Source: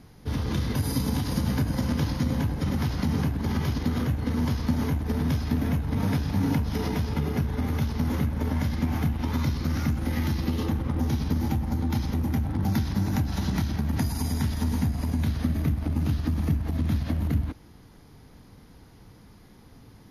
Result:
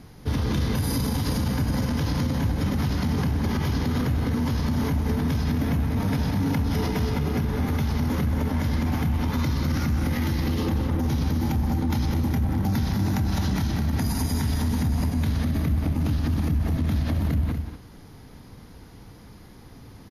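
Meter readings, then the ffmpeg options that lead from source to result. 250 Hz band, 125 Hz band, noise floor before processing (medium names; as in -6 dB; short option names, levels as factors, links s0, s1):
+1.5 dB, +2.0 dB, -51 dBFS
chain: -af "aecho=1:1:183.7|239.1:0.282|0.282,alimiter=limit=0.0891:level=0:latency=1:release=33,volume=1.68"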